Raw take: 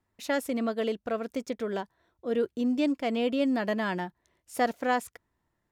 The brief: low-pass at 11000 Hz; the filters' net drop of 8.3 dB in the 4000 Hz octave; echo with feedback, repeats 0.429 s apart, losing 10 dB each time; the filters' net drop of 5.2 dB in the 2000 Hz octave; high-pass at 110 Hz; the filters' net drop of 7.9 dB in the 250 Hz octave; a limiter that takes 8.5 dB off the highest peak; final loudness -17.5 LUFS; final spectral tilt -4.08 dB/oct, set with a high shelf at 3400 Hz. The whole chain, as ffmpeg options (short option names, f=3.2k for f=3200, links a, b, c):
-af "highpass=110,lowpass=11k,equalizer=f=250:t=o:g=-8.5,equalizer=f=2k:t=o:g=-3,highshelf=f=3.4k:g=-9,equalizer=f=4k:t=o:g=-4,alimiter=level_in=1.5dB:limit=-24dB:level=0:latency=1,volume=-1.5dB,aecho=1:1:429|858|1287|1716:0.316|0.101|0.0324|0.0104,volume=18.5dB"